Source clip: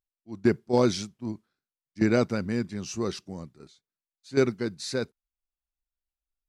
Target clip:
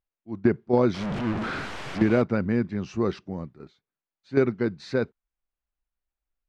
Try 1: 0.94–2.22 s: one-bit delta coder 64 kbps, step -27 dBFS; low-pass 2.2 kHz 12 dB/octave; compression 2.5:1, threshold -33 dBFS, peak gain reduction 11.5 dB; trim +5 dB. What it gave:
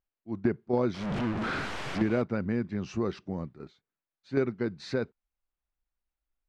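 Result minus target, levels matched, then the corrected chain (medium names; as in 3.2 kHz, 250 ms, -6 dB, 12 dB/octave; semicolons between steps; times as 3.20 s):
compression: peak gain reduction +6.5 dB
0.94–2.22 s: one-bit delta coder 64 kbps, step -27 dBFS; low-pass 2.2 kHz 12 dB/octave; compression 2.5:1, threshold -22.5 dBFS, peak gain reduction 5 dB; trim +5 dB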